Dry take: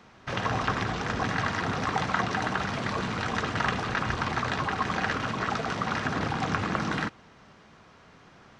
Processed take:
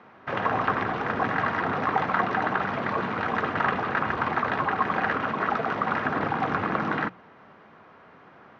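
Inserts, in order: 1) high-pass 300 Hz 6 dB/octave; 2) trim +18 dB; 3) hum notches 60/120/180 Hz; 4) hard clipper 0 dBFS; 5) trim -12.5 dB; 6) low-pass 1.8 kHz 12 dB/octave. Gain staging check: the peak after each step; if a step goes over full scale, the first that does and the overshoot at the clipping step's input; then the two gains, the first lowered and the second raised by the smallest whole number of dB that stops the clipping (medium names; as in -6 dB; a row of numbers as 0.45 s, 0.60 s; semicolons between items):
-10.0 dBFS, +8.0 dBFS, +8.0 dBFS, 0.0 dBFS, -12.5 dBFS, -12.0 dBFS; step 2, 8.0 dB; step 2 +10 dB, step 5 -4.5 dB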